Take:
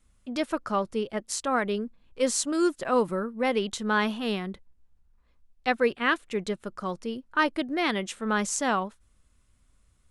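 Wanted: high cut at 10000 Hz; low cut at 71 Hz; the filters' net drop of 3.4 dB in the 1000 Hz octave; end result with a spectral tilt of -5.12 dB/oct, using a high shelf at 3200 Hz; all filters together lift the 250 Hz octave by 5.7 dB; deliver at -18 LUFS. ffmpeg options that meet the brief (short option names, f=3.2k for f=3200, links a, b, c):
-af "highpass=71,lowpass=10k,equalizer=f=250:t=o:g=7.5,equalizer=f=1k:t=o:g=-4,highshelf=f=3.2k:g=-8.5,volume=8.5dB"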